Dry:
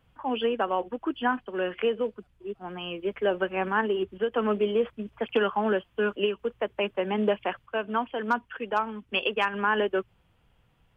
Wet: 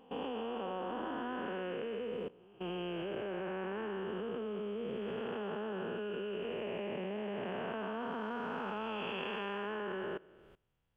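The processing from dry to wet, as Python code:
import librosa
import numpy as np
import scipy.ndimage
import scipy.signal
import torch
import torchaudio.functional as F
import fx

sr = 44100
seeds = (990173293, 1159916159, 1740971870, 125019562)

y = fx.spec_blur(x, sr, span_ms=555.0)
y = fx.level_steps(y, sr, step_db=21)
y = y * librosa.db_to_amplitude(3.0)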